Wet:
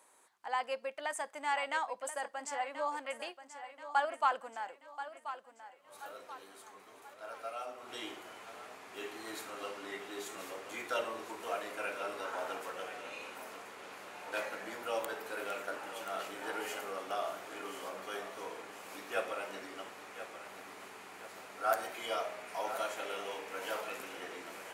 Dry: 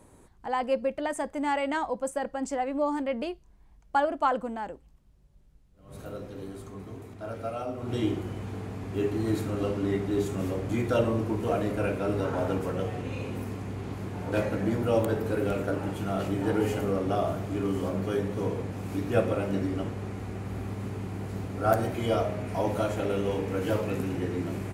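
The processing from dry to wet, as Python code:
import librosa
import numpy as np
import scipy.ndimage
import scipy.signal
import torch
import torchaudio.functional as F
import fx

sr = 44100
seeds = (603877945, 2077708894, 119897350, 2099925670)

y = scipy.signal.sosfilt(scipy.signal.butter(2, 940.0, 'highpass', fs=sr, output='sos'), x)
y = fx.echo_feedback(y, sr, ms=1032, feedback_pct=45, wet_db=-12)
y = y * 10.0 ** (-1.5 / 20.0)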